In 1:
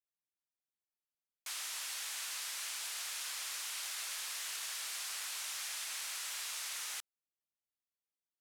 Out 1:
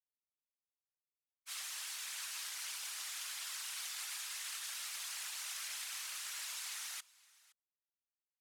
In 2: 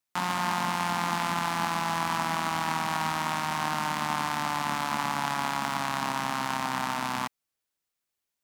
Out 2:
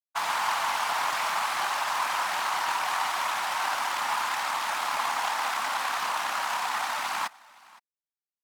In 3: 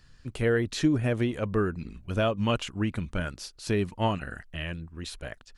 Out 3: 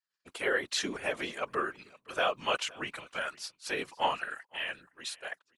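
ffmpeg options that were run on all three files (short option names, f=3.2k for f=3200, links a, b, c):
-filter_complex "[0:a]agate=range=-33dB:threshold=-36dB:ratio=3:detection=peak,highpass=770,afftfilt=real='hypot(re,im)*cos(2*PI*random(0))':imag='hypot(re,im)*sin(2*PI*random(1))':win_size=512:overlap=0.75,asplit=2[a][b];[b]aecho=0:1:516:0.0708[c];[a][c]amix=inputs=2:normalize=0,volume=8.5dB"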